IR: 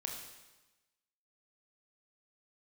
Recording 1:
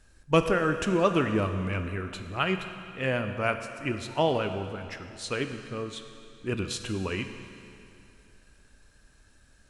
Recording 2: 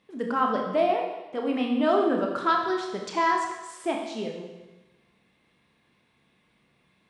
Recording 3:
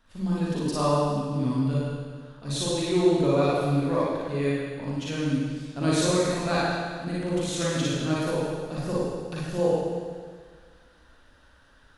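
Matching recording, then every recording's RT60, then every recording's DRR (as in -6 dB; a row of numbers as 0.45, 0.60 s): 2; 2.7, 1.1, 1.7 s; 7.0, 0.5, -8.5 dB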